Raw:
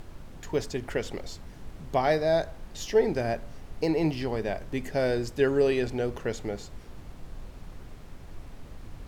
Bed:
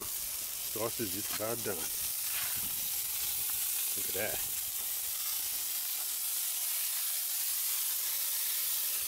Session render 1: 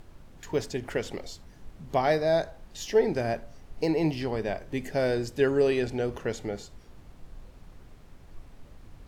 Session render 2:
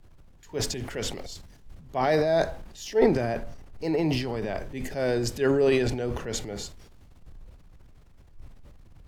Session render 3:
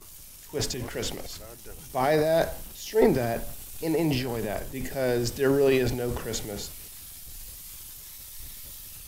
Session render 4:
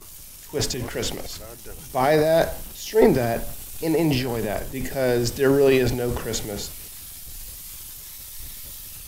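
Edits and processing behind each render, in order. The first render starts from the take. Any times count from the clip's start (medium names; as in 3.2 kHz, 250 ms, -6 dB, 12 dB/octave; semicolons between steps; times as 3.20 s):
noise print and reduce 6 dB
transient shaper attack -5 dB, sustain +9 dB; three bands expanded up and down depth 40%
add bed -10.5 dB
trim +4.5 dB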